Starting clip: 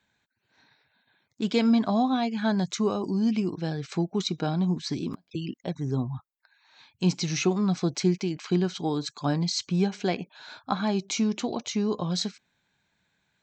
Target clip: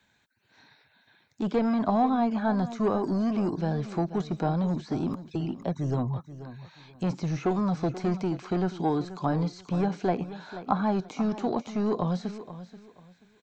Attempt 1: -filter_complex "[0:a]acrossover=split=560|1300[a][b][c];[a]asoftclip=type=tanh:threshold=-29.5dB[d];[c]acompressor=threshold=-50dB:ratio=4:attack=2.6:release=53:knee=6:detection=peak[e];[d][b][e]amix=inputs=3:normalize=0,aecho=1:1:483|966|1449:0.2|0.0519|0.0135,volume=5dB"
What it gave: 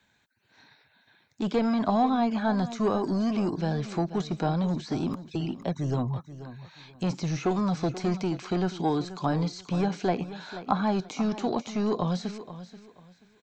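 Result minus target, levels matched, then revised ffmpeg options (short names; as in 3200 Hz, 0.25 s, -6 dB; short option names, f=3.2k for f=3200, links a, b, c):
compressor: peak gain reduction -7 dB
-filter_complex "[0:a]acrossover=split=560|1300[a][b][c];[a]asoftclip=type=tanh:threshold=-29.5dB[d];[c]acompressor=threshold=-59dB:ratio=4:attack=2.6:release=53:knee=6:detection=peak[e];[d][b][e]amix=inputs=3:normalize=0,aecho=1:1:483|966|1449:0.2|0.0519|0.0135,volume=5dB"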